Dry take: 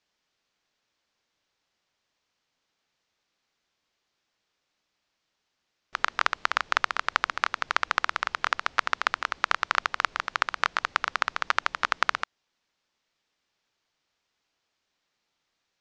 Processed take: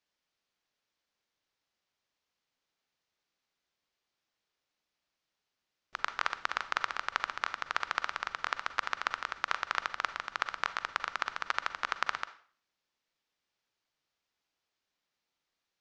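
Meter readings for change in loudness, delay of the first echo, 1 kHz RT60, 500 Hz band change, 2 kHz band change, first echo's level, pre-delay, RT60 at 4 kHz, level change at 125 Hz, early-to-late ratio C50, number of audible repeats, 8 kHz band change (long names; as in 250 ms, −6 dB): −7.5 dB, no echo audible, 0.45 s, −7.0 dB, −7.5 dB, no echo audible, 37 ms, 0.40 s, can't be measured, 14.0 dB, no echo audible, −7.0 dB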